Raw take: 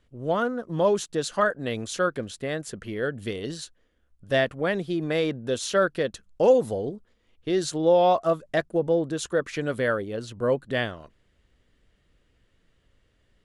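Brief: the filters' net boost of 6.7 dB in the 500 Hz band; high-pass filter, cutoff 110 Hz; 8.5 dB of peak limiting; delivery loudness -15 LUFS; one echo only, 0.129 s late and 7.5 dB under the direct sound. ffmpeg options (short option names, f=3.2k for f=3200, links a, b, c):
-af "highpass=110,equalizer=f=500:t=o:g=7.5,alimiter=limit=-10dB:level=0:latency=1,aecho=1:1:129:0.422,volume=6.5dB"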